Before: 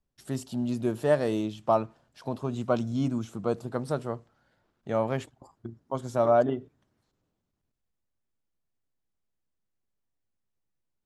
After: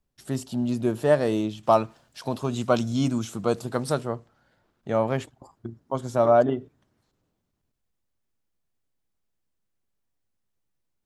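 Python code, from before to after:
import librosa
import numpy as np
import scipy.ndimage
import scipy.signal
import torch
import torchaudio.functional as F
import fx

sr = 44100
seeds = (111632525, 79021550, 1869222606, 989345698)

y = fx.high_shelf(x, sr, hz=2100.0, db=9.5, at=(1.63, 4.01))
y = y * librosa.db_to_amplitude(3.5)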